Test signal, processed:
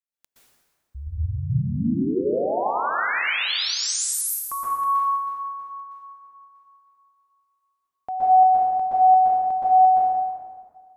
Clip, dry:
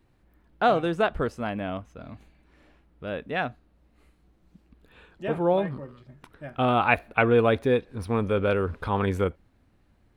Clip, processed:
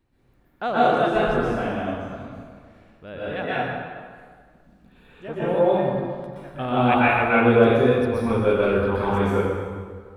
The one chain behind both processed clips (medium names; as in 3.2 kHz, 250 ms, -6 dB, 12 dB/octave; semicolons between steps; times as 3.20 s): plate-style reverb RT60 1.8 s, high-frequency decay 0.7×, pre-delay 110 ms, DRR -9.5 dB; trim -6 dB